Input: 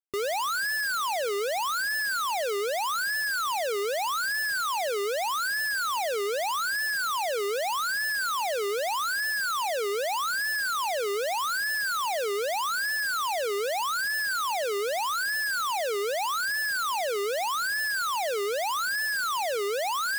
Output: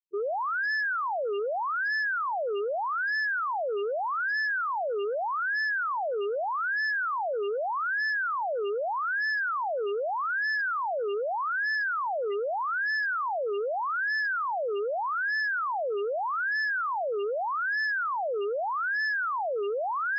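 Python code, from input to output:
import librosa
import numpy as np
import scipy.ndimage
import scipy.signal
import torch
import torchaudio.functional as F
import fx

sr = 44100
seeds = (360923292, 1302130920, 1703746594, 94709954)

y = fx.peak_eq(x, sr, hz=2700.0, db=6.5, octaves=0.66)
y = fx.spec_topn(y, sr, count=4)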